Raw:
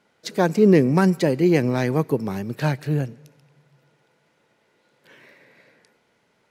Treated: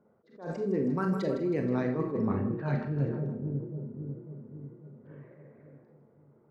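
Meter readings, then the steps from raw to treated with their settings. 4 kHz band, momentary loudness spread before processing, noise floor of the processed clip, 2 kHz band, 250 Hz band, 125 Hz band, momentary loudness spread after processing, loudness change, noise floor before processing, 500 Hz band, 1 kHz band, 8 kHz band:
below −15 dB, 10 LU, −64 dBFS, −13.5 dB, −10.0 dB, −8.5 dB, 18 LU, −11.0 dB, −66 dBFS, −11.0 dB, −11.0 dB, below −20 dB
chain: spectral envelope exaggerated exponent 1.5
parametric band 1,200 Hz +8 dB 0.53 octaves
hum removal 64.28 Hz, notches 13
on a send: echo with a time of its own for lows and highs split 450 Hz, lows 547 ms, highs 159 ms, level −13 dB
on the sum: low-pass that shuts in the quiet parts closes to 580 Hz, open at −13.5 dBFS
parametric band 100 Hz +3.5 dB 1.7 octaves
reversed playback
downward compressor 12 to 1, threshold −27 dBFS, peak gain reduction 17.5 dB
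reversed playback
four-comb reverb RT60 0.35 s, combs from 28 ms, DRR 4.5 dB
level that may rise only so fast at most 150 dB per second

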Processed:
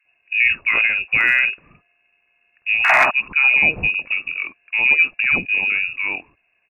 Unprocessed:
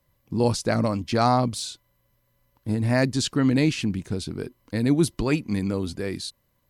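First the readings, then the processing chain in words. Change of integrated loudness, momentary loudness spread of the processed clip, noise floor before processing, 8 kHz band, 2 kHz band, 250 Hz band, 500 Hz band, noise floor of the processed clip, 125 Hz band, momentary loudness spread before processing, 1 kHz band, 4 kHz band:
+8.5 dB, 11 LU, −70 dBFS, below −10 dB, +21.0 dB, −16.5 dB, −6.5 dB, −66 dBFS, −16.5 dB, 12 LU, +3.0 dB, +3.0 dB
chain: high-pass filter 58 Hz 6 dB per octave
sound drawn into the spectrogram noise, 0:02.84–0:03.06, 420–2,100 Hz −16 dBFS
in parallel at +1 dB: brickwall limiter −13.5 dBFS, peak gain reduction 8.5 dB
on the sum: voice inversion scrambler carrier 2,700 Hz
gain into a clipping stage and back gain 4 dB
multiband delay without the direct sound highs, lows 50 ms, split 1,200 Hz

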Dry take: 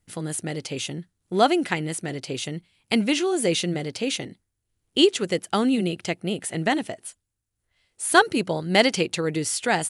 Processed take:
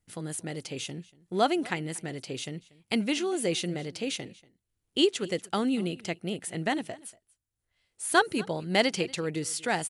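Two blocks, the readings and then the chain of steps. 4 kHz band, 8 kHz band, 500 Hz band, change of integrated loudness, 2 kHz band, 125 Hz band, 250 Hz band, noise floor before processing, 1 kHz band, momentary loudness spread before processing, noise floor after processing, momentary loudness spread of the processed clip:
−6.0 dB, −6.0 dB, −6.0 dB, −6.0 dB, −6.0 dB, −6.0 dB, −6.0 dB, −79 dBFS, −6.0 dB, 11 LU, −83 dBFS, 11 LU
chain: single-tap delay 237 ms −22.5 dB
level −6 dB

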